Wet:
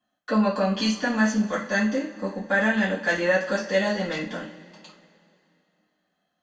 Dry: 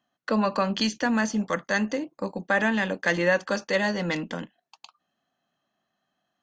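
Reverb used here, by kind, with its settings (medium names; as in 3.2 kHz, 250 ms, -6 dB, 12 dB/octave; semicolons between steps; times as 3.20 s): two-slope reverb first 0.33 s, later 2.8 s, from -22 dB, DRR -9 dB; trim -9 dB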